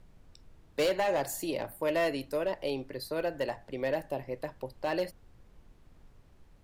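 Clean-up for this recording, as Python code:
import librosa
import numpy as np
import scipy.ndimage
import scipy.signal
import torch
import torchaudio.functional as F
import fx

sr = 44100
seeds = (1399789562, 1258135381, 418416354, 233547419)

y = fx.fix_declip(x, sr, threshold_db=-23.0)
y = fx.noise_reduce(y, sr, print_start_s=6.12, print_end_s=6.62, reduce_db=19.0)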